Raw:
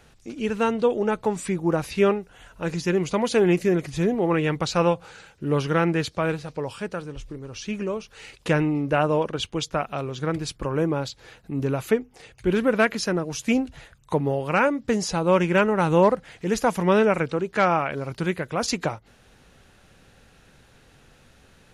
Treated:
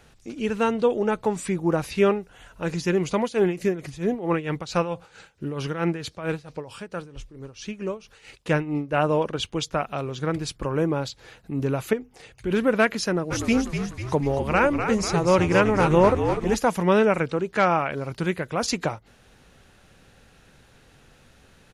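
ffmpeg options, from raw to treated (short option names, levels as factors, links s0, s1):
-filter_complex "[0:a]asettb=1/sr,asplit=3[s0][s1][s2];[s0]atrim=end=3.214[s3];[s1]atrim=start=3.21:end=9.02,asetpts=PTS-STARTPTS,afade=t=in:d=0.004:c=qsin,afade=t=out:st=5.806:d=0.004:c=qsin,tremolo=f=4.5:d=0.76[s4];[s2]atrim=start=9.016[s5];[s3][s4]acrossfade=d=0.004:c1=hsin:c2=qsin[s6];[s6][s5]acrossfade=d=0.004:c1=qsin:c2=hsin,asettb=1/sr,asplit=3[s7][s8][s9];[s7]atrim=end=11.934[s10];[s8]atrim=start=11.93:end=12.51,asetpts=PTS-STARTPTS,afade=t=in:d=0.004:c=qsin,afade=t=out:st=0.576:d=0.004:c=qsin,acompressor=threshold=0.0282:ratio=1.5:attack=3.2:release=140:knee=1:detection=peak[s11];[s9]atrim=start=12.506[s12];[s10][s11]acrossfade=d=0.004:c1=hsin:c2=qsin[s13];[s13][s12]acrossfade=d=0.004:c1=qsin:c2=hsin,asplit=3[s14][s15][s16];[s14]afade=t=out:st=13.3:d=0.02[s17];[s15]asplit=8[s18][s19][s20][s21][s22][s23][s24][s25];[s19]adelay=247,afreqshift=-67,volume=0.447[s26];[s20]adelay=494,afreqshift=-134,volume=0.254[s27];[s21]adelay=741,afreqshift=-201,volume=0.145[s28];[s22]adelay=988,afreqshift=-268,volume=0.0832[s29];[s23]adelay=1235,afreqshift=-335,volume=0.0473[s30];[s24]adelay=1482,afreqshift=-402,volume=0.0269[s31];[s25]adelay=1729,afreqshift=-469,volume=0.0153[s32];[s18][s26][s27][s28][s29][s30][s31][s32]amix=inputs=8:normalize=0,afade=t=in:st=13.3:d=0.02,afade=t=out:st=16.54:d=0.02[s33];[s16]afade=t=in:st=16.54:d=0.02[s34];[s17][s33][s34]amix=inputs=3:normalize=0"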